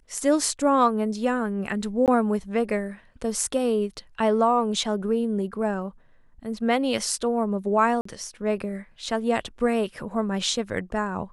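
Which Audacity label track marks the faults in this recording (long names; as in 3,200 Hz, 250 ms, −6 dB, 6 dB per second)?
2.060000	2.080000	drop-out 18 ms
8.010000	8.050000	drop-out 44 ms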